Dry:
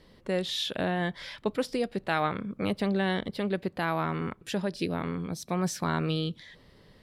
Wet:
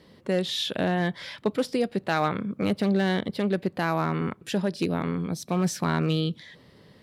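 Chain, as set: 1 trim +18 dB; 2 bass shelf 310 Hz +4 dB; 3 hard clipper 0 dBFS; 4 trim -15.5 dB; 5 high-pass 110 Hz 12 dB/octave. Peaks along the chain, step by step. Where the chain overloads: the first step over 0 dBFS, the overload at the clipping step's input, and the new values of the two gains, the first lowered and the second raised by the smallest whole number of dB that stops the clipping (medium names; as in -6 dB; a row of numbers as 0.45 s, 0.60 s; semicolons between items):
+3.5 dBFS, +4.5 dBFS, 0.0 dBFS, -15.5 dBFS, -12.5 dBFS; step 1, 4.5 dB; step 1 +13 dB, step 4 -10.5 dB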